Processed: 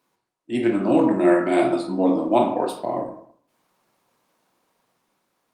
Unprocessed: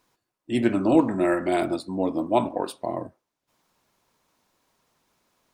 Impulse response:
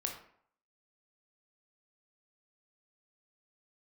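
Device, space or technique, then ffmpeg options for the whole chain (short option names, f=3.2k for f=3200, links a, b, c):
far-field microphone of a smart speaker: -filter_complex "[0:a]highshelf=f=6.6k:g=-3,asettb=1/sr,asplit=3[a][b][c];[a]atrim=end=1.494[d];[b]atrim=start=1.49:end=2.14,asetpts=PTS-STARTPTS,afade=t=in:d=0.004:c=qsin,afade=t=out:st=0.646:d=0.004:c=qsin,asplit=2[e][f];[f]adelay=15,volume=-7dB[g];[e][g]amix=inputs=2:normalize=0,atrim=end_sample=28665[h];[c]atrim=start=2.136[i];[d][h]acrossfade=d=0.004:c1=hsin:c2=qsin[j];[j][i]acrossfade=d=0.004:c1=qsin:c2=hsin[k];[1:a]atrim=start_sample=2205[l];[k][l]afir=irnorm=-1:irlink=0,highpass=f=130:w=0.5412,highpass=f=130:w=1.3066,dynaudnorm=f=220:g=9:m=3.5dB" -ar 48000 -c:a libopus -b:a 32k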